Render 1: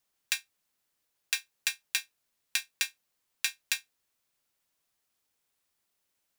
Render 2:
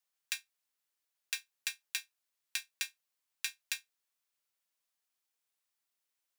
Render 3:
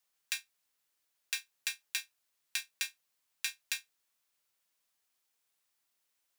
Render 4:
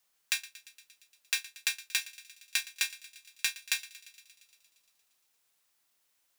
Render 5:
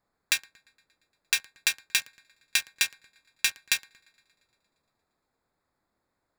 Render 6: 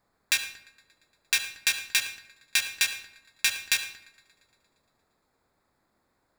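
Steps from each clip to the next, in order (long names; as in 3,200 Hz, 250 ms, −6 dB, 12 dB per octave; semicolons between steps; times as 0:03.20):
low-shelf EQ 450 Hz −11.5 dB; level −6.5 dB
brickwall limiter −18 dBFS, peak gain reduction 5.5 dB; level +5.5 dB
hard clipping −16 dBFS, distortion −23 dB; feedback echo with a high-pass in the loop 116 ms, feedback 75%, high-pass 1,100 Hz, level −18 dB; level +5.5 dB
adaptive Wiener filter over 15 samples; low-shelf EQ 450 Hz +9.5 dB; level +5.5 dB
brickwall limiter −12.5 dBFS, peak gain reduction 7.5 dB; convolution reverb RT60 0.75 s, pre-delay 57 ms, DRR 9.5 dB; level +6 dB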